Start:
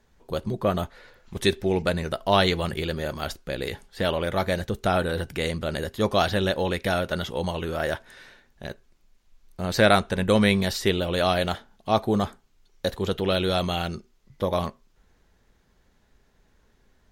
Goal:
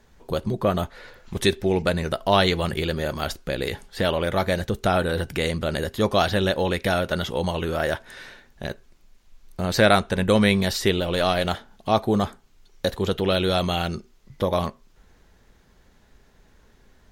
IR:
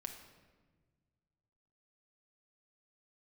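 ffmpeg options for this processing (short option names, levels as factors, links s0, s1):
-filter_complex "[0:a]asettb=1/sr,asplit=3[s0][s1][s2];[s0]atrim=end=11.004[s3];[s1]atrim=start=11:end=11.45,asetpts=PTS-STARTPTS,afade=t=in:d=0.004:c=qsin,afade=t=out:st=0.446:d=0.004:c=qsin,aeval=exprs='if(lt(val(0),0),0.708*val(0),val(0))':c=same[s4];[s2]atrim=start=11.446[s5];[s3][s4]acrossfade=d=0.004:c1=hsin:c2=qsin[s6];[s6][s5]acrossfade=d=0.004:c1=qsin:c2=hsin,asplit=2[s7][s8];[s8]acompressor=threshold=0.02:ratio=6,volume=1.12[s9];[s7][s9]amix=inputs=2:normalize=0"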